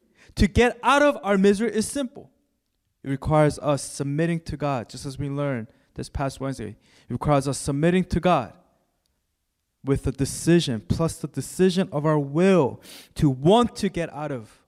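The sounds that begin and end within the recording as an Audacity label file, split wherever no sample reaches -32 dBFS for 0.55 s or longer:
3.050000	8.480000	sound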